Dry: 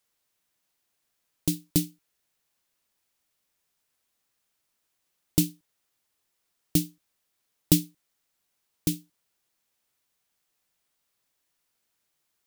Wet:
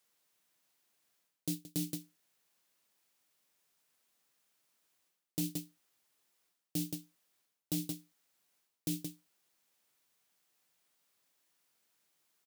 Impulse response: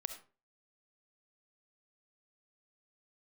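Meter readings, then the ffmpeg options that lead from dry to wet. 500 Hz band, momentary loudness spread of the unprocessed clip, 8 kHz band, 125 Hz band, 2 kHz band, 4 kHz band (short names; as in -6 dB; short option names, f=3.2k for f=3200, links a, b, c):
-11.5 dB, 14 LU, -10.5 dB, -11.5 dB, -10.0 dB, -10.5 dB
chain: -af "aeval=exprs='0.668*(cos(1*acos(clip(val(0)/0.668,-1,1)))-cos(1*PI/2))+0.0841*(cos(3*acos(clip(val(0)/0.668,-1,1)))-cos(3*PI/2))+0.0133*(cos(6*acos(clip(val(0)/0.668,-1,1)))-cos(6*PI/2))+0.0133*(cos(7*acos(clip(val(0)/0.668,-1,1)))-cos(7*PI/2))':c=same,highpass=130,alimiter=limit=-11dB:level=0:latency=1:release=176,aecho=1:1:174:0.141,areverse,acompressor=threshold=-41dB:ratio=6,areverse,volume=7dB"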